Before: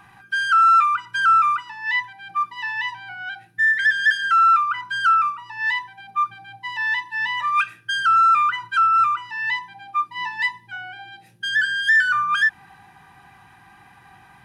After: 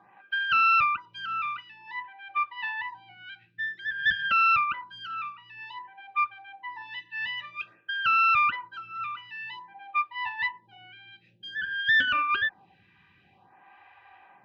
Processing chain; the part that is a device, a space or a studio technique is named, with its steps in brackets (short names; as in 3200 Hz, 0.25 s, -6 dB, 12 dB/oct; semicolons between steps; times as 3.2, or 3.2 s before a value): vibe pedal into a guitar amplifier (photocell phaser 0.52 Hz; tube stage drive 16 dB, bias 0.75; speaker cabinet 89–3800 Hz, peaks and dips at 140 Hz -8 dB, 250 Hz -4 dB, 570 Hz +9 dB, 1400 Hz -4 dB, 2600 Hz +6 dB)